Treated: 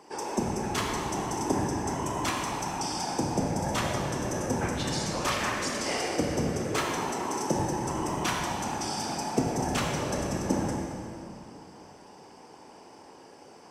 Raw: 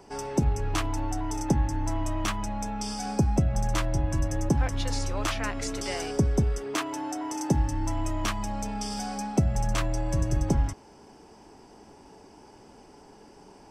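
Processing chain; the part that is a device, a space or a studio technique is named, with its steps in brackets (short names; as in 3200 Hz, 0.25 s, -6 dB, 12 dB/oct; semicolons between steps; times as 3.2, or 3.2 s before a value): whispering ghost (whisperiser; HPF 390 Hz 6 dB/oct; reverb RT60 2.7 s, pre-delay 21 ms, DRR -1 dB)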